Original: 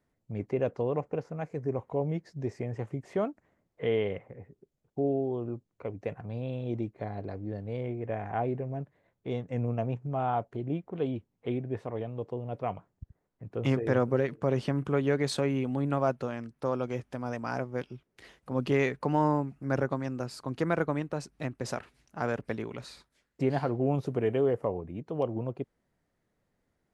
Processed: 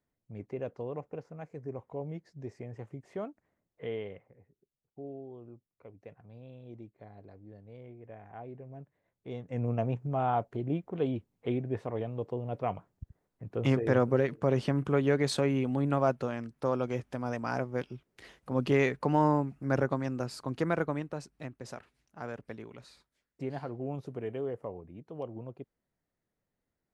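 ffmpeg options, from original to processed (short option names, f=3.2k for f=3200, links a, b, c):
-af "volume=7dB,afade=t=out:st=3.85:d=0.52:silence=0.473151,afade=t=in:st=8.43:d=0.96:silence=0.398107,afade=t=in:st=9.39:d=0.35:silence=0.446684,afade=t=out:st=20.33:d=1.29:silence=0.334965"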